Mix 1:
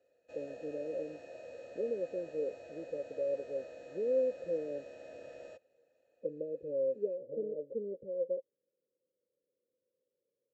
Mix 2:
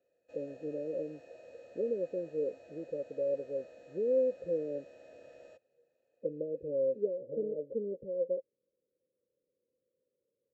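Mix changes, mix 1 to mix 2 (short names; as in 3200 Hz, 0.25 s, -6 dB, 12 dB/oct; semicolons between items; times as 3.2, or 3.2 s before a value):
speech: add tilt -2 dB/oct; background -5.0 dB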